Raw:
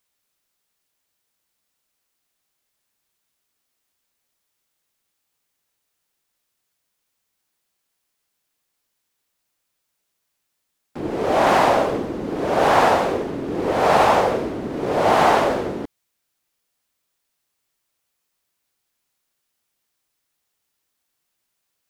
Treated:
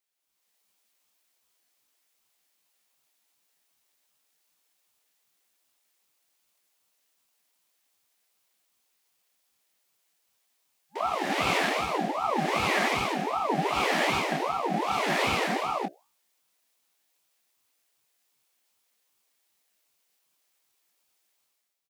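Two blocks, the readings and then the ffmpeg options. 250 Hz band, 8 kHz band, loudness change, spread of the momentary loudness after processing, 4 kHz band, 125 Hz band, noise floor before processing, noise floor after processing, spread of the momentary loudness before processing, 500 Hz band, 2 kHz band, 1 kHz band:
−8.0 dB, −2.5 dB, −8.0 dB, 6 LU, −1.0 dB, −7.0 dB, −76 dBFS, −74 dBFS, 12 LU, −12.0 dB, −3.0 dB, −8.5 dB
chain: -filter_complex "[0:a]acrossover=split=160[link_01][link_02];[link_02]acompressor=threshold=-18dB:ratio=5[link_03];[link_01][link_03]amix=inputs=2:normalize=0,afftfilt=real='re*(1-between(b*sr/4096,320,1100))':imag='im*(1-between(b*sr/4096,320,1100))':win_size=4096:overlap=0.75,bandreject=frequency=60:width_type=h:width=6,bandreject=frequency=120:width_type=h:width=6,bandreject=frequency=180:width_type=h:width=6,dynaudnorm=framelen=100:gausssize=9:maxgain=11.5dB,asplit=2[link_04][link_05];[link_05]aecho=0:1:16|27:0.299|0.398[link_06];[link_04][link_06]amix=inputs=2:normalize=0,aeval=exprs='val(0)*sin(2*PI*760*n/s+760*0.4/2.6*sin(2*PI*2.6*n/s))':channel_layout=same,volume=-7dB"

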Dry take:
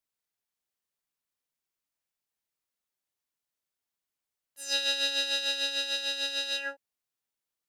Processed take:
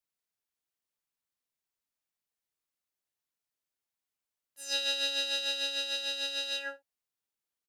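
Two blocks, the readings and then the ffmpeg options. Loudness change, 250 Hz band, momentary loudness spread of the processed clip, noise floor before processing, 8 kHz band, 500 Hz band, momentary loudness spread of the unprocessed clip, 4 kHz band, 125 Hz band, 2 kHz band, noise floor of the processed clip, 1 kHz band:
−2.5 dB, −3.5 dB, 7 LU, below −85 dBFS, −3.0 dB, −1.5 dB, 6 LU, −2.5 dB, can't be measured, −3.5 dB, below −85 dBFS, −2.5 dB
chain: -af "aecho=1:1:31|58:0.168|0.15,volume=-3dB"

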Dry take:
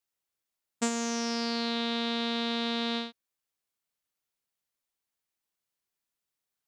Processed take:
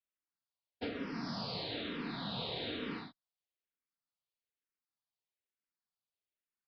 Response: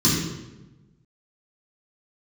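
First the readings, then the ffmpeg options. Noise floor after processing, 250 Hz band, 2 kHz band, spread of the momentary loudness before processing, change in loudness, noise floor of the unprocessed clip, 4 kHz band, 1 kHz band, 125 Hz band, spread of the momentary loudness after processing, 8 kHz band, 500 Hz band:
below −85 dBFS, −10.0 dB, −8.5 dB, 3 LU, −9.5 dB, below −85 dBFS, −9.0 dB, −10.0 dB, can't be measured, 5 LU, below −25 dB, −8.5 dB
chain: -filter_complex "[0:a]afftfilt=real='hypot(re,im)*cos(2*PI*random(0))':imag='hypot(re,im)*sin(2*PI*random(1))':win_size=512:overlap=0.75,aresample=11025,aresample=44100,asplit=2[link_01][link_02];[link_02]afreqshift=-1.1[link_03];[link_01][link_03]amix=inputs=2:normalize=1"

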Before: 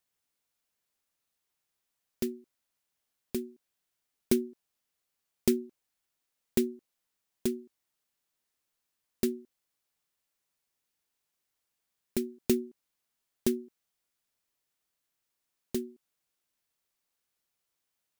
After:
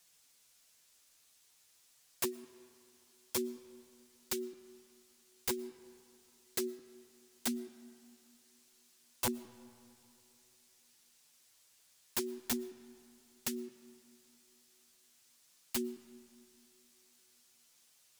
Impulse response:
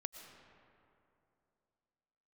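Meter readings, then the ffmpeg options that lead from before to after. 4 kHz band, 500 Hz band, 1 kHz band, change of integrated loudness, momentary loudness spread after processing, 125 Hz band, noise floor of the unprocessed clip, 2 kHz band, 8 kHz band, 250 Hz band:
+1.5 dB, −8.0 dB, +8.5 dB, −6.0 dB, 21 LU, −10.0 dB, −84 dBFS, +2.5 dB, +2.0 dB, −9.0 dB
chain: -filter_complex "[0:a]equalizer=frequency=6700:width_type=o:width=2.5:gain=10.5,acompressor=threshold=-36dB:ratio=16,flanger=delay=5.5:depth=8.8:regen=7:speed=0.45:shape=triangular,aeval=exprs='0.126*(cos(1*acos(clip(val(0)/0.126,-1,1)))-cos(1*PI/2))+0.0112*(cos(3*acos(clip(val(0)/0.126,-1,1)))-cos(3*PI/2))+0.0501*(cos(5*acos(clip(val(0)/0.126,-1,1)))-cos(5*PI/2))':channel_layout=same,aeval=exprs='(mod(29.9*val(0)+1,2)-1)/29.9':channel_layout=same,asplit=2[link_01][link_02];[1:a]atrim=start_sample=2205[link_03];[link_02][link_03]afir=irnorm=-1:irlink=0,volume=-5.5dB[link_04];[link_01][link_04]amix=inputs=2:normalize=0,volume=1dB"

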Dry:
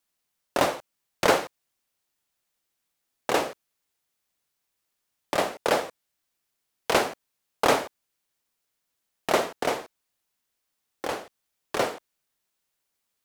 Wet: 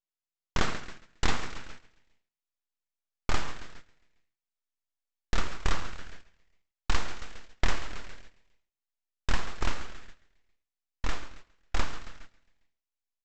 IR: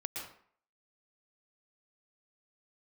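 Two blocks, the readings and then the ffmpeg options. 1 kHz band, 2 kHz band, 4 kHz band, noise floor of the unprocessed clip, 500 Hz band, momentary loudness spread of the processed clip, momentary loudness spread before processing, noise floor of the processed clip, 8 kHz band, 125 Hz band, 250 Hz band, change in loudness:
−10.0 dB, −5.5 dB, −5.0 dB, −80 dBFS, −16.5 dB, 18 LU, 14 LU, below −85 dBFS, −7.0 dB, +5.5 dB, −7.0 dB, −8.5 dB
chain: -filter_complex "[0:a]asplit=7[link_01][link_02][link_03][link_04][link_05][link_06][link_07];[link_02]adelay=136,afreqshift=76,volume=-15dB[link_08];[link_03]adelay=272,afreqshift=152,volume=-19.9dB[link_09];[link_04]adelay=408,afreqshift=228,volume=-24.8dB[link_10];[link_05]adelay=544,afreqshift=304,volume=-29.6dB[link_11];[link_06]adelay=680,afreqshift=380,volume=-34.5dB[link_12];[link_07]adelay=816,afreqshift=456,volume=-39.4dB[link_13];[link_01][link_08][link_09][link_10][link_11][link_12][link_13]amix=inputs=7:normalize=0,aresample=16000,aeval=exprs='abs(val(0))':channel_layout=same,aresample=44100,asubboost=boost=3.5:cutoff=57,agate=range=-13dB:threshold=-38dB:ratio=16:detection=peak,acompressor=threshold=-17dB:ratio=4,asplit=2[link_14][link_15];[1:a]atrim=start_sample=2205[link_16];[link_15][link_16]afir=irnorm=-1:irlink=0,volume=-20dB[link_17];[link_14][link_17]amix=inputs=2:normalize=0,volume=-2dB"

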